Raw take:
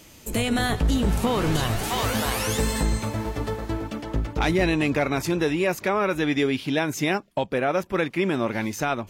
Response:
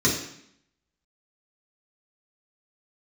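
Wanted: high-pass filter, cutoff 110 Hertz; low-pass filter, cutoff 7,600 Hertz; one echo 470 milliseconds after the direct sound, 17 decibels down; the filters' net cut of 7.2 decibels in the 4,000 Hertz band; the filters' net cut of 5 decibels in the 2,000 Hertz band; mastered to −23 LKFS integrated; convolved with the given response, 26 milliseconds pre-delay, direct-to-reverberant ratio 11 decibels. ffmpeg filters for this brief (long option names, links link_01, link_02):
-filter_complex "[0:a]highpass=110,lowpass=7600,equalizer=frequency=2000:width_type=o:gain=-4.5,equalizer=frequency=4000:width_type=o:gain=-7.5,aecho=1:1:470:0.141,asplit=2[link_01][link_02];[1:a]atrim=start_sample=2205,adelay=26[link_03];[link_02][link_03]afir=irnorm=-1:irlink=0,volume=-25.5dB[link_04];[link_01][link_04]amix=inputs=2:normalize=0,volume=2dB"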